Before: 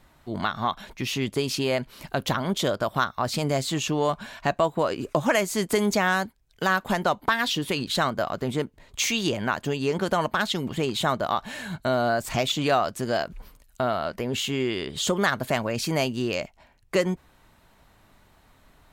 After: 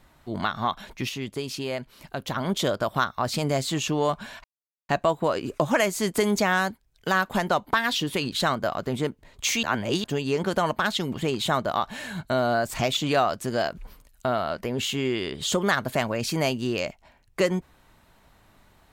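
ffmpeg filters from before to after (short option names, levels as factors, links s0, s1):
-filter_complex "[0:a]asplit=6[s0][s1][s2][s3][s4][s5];[s0]atrim=end=1.092[s6];[s1]atrim=start=1.088:end=2.362,asetpts=PTS-STARTPTS,volume=0.531[s7];[s2]atrim=start=2.358:end=4.44,asetpts=PTS-STARTPTS,afade=t=out:st=2.078:d=0.004:c=hsin,apad=pad_dur=0.45[s8];[s3]atrim=start=4.44:end=9.182,asetpts=PTS-STARTPTS,afade=t=in:d=0.004:c=hsin[s9];[s4]atrim=start=9.178:end=9.592,asetpts=PTS-STARTPTS,areverse[s10];[s5]atrim=start=9.588[s11];[s6][s7]acrossfade=d=0.004:c1=hsin:c2=hsin[s12];[s8][s9]concat=n=2:v=0:a=1[s13];[s12][s13]acrossfade=d=0.004:c1=hsin:c2=hsin[s14];[s14][s10]acrossfade=d=0.004:c1=hsin:c2=hsin[s15];[s15][s11]acrossfade=d=0.004:c1=hsin:c2=hsin"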